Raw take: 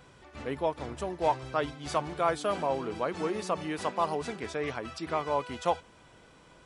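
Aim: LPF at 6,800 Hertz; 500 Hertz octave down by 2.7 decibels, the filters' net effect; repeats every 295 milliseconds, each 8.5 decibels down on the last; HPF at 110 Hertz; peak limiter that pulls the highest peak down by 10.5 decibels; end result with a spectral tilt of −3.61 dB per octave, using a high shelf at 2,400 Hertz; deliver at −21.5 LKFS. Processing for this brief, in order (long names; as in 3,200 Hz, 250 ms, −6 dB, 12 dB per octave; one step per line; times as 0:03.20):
high-pass filter 110 Hz
low-pass filter 6,800 Hz
parametric band 500 Hz −4 dB
high-shelf EQ 2,400 Hz +8 dB
brickwall limiter −23.5 dBFS
repeating echo 295 ms, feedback 38%, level −8.5 dB
level +14 dB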